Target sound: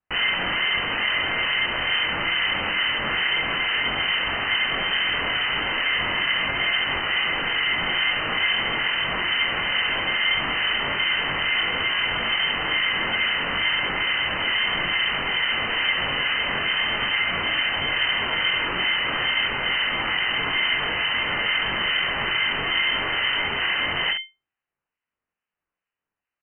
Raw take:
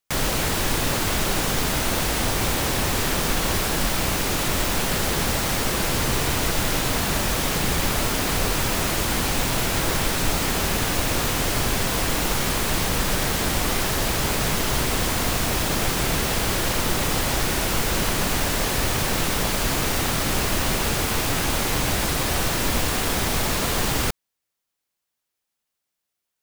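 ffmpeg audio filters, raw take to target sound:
-filter_complex "[0:a]lowpass=f=2.2k:t=q:w=0.5098,lowpass=f=2.2k:t=q:w=0.6013,lowpass=f=2.2k:t=q:w=0.9,lowpass=f=2.2k:t=q:w=2.563,afreqshift=-2600,acrossover=split=1500[a][b];[a]aeval=exprs='val(0)*(1-0.7/2+0.7/2*cos(2*PI*2.3*n/s))':c=same[c];[b]aeval=exprs='val(0)*(1-0.7/2-0.7/2*cos(2*PI*2.3*n/s))':c=same[d];[c][d]amix=inputs=2:normalize=0,asplit=2[e][f];[f]alimiter=limit=-23dB:level=0:latency=1:release=57,volume=1dB[g];[e][g]amix=inputs=2:normalize=0,aeval=exprs='val(0)*sin(2*PI*490*n/s)':c=same,aecho=1:1:22|67:0.631|0.422"

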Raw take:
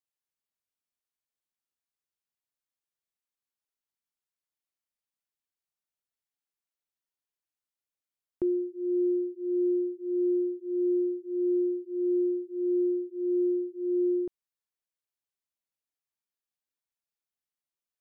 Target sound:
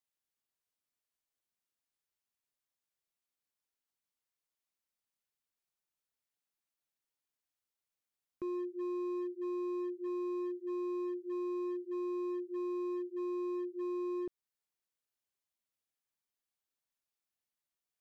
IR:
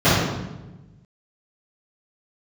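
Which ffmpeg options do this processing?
-filter_complex "[0:a]asettb=1/sr,asplit=3[a][b][c];[a]atrim=end=10.074[d];[b]atrim=start=10.07:end=11.84,asetpts=PTS-STARTPTS,afade=t=in:d=0.004:c=qsin,afade=t=out:st=1.766:d=0.004:c=qsin,lowshelf=f=380:g=-2.5[e];[c]atrim=start=11.836[f];[d][e]acrossfade=d=0.004:c1=hsin:c2=qsin[g];[g][f]acrossfade=d=0.004:c1=qsin:c2=hsin,alimiter=level_in=7dB:limit=-24dB:level=0:latency=1:release=388,volume=-7dB,volume=35dB,asoftclip=hard,volume=-35dB"

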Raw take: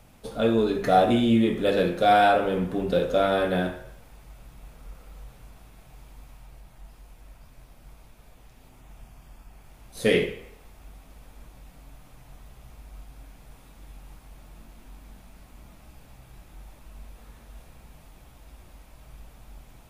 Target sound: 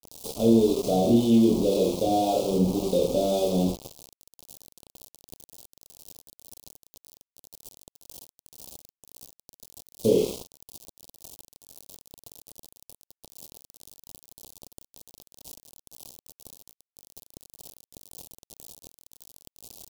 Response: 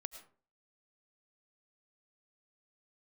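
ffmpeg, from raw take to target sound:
-filter_complex "[0:a]aeval=exprs='val(0)+0.5*0.0335*sgn(val(0))':c=same,highpass=45,lowshelf=f=120:g=-6,acrossover=split=650|1400[a][b][c];[b]acompressor=threshold=-44dB:ratio=6[d];[c]alimiter=level_in=2dB:limit=-24dB:level=0:latency=1,volume=-2dB[e];[a][d][e]amix=inputs=3:normalize=0,aecho=1:1:26|65:0.562|0.398,acrossover=split=450[f][g];[f]aeval=exprs='val(0)*(1-0.5/2+0.5/2*cos(2*PI*1.9*n/s))':c=same[h];[g]aeval=exprs='val(0)*(1-0.5/2-0.5/2*cos(2*PI*1.9*n/s))':c=same[i];[h][i]amix=inputs=2:normalize=0,aeval=exprs='val(0)*gte(abs(val(0)),0.0376)':c=same,asuperstop=centerf=1700:order=4:qfactor=0.55,adynamicequalizer=threshold=0.00224:dfrequency=5700:dqfactor=0.7:tfrequency=5700:tqfactor=0.7:attack=5:release=100:ratio=0.375:range=1.5:mode=cutabove:tftype=highshelf,volume=2.5dB"

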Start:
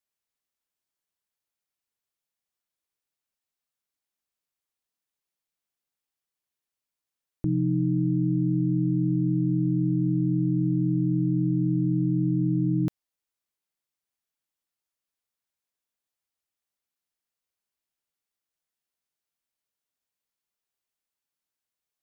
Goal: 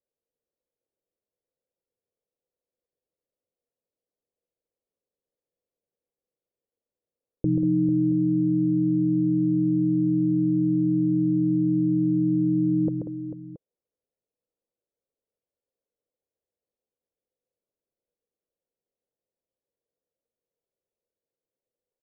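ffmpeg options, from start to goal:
-af "lowpass=f=500:t=q:w=4.9,aecho=1:1:134|189|444|676:0.531|0.335|0.266|0.126"

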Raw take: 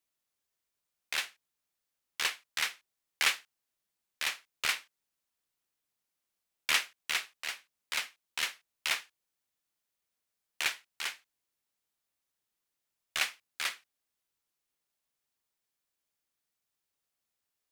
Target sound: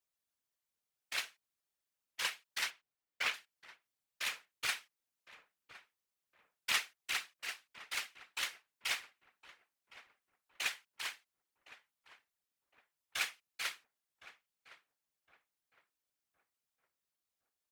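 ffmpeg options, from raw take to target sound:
-filter_complex "[0:a]asettb=1/sr,asplit=3[a][b][c];[a]atrim=end=2.704[d];[b]atrim=start=2.7:end=3.34,asetpts=PTS-STARTPTS,afade=t=in:d=0.004:c=qsin,afade=t=out:st=0.636:d=0.004:c=qsin,equalizer=f=12k:w=0.37:g=-12.5[e];[c]atrim=start=3.336[f];[d][e]acrossfade=d=0.004:c1=hsin:c2=qsin[g];[g][f]acrossfade=d=0.004:c1=qsin:c2=hsin,afftfilt=real='hypot(re,im)*cos(2*PI*random(0))':imag='hypot(re,im)*sin(2*PI*random(1))':win_size=512:overlap=0.75,asplit=2[h][i];[i]adelay=1062,lowpass=f=1.2k:p=1,volume=-13.5dB,asplit=2[j][k];[k]adelay=1062,lowpass=f=1.2k:p=1,volume=0.4,asplit=2[l][m];[m]adelay=1062,lowpass=f=1.2k:p=1,volume=0.4,asplit=2[n][o];[o]adelay=1062,lowpass=f=1.2k:p=1,volume=0.4[p];[h][j][l][n][p]amix=inputs=5:normalize=0,volume=1dB"

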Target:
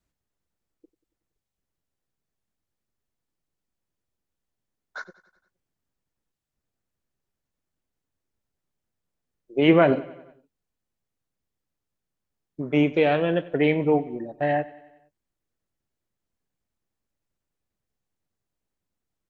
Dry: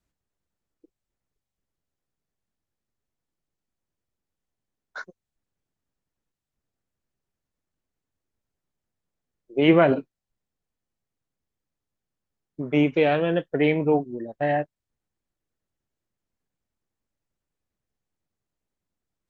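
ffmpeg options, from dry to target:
-af "aecho=1:1:93|186|279|372|465:0.106|0.0614|0.0356|0.0207|0.012"

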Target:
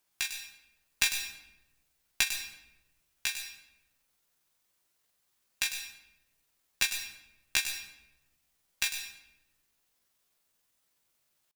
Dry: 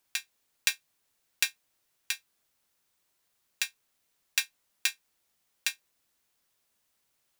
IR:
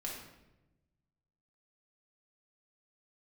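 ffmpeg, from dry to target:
-filter_complex "[0:a]atempo=0.64,aeval=exprs='(tanh(2.51*val(0)+0.5)-tanh(0.5))/2.51':c=same,asplit=2[a][b];[1:a]atrim=start_sample=2205,highshelf=f=4.9k:g=8.5,adelay=99[c];[b][c]afir=irnorm=-1:irlink=0,volume=-9.5dB[d];[a][d]amix=inputs=2:normalize=0,volume=1dB"

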